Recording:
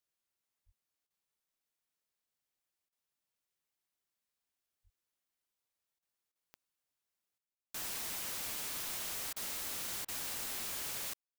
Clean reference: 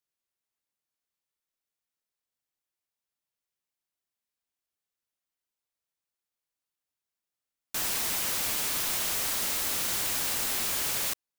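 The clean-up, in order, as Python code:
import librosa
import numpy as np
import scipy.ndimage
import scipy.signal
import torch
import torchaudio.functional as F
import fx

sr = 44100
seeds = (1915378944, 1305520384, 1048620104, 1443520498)

y = fx.fix_declick_ar(x, sr, threshold=10.0)
y = fx.fix_deplosive(y, sr, at_s=(0.65, 4.83))
y = fx.fix_interpolate(y, sr, at_s=(1.07, 2.89, 5.99, 6.32, 7.55, 9.33, 10.05), length_ms=32.0)
y = fx.fix_level(y, sr, at_s=7.38, step_db=10.5)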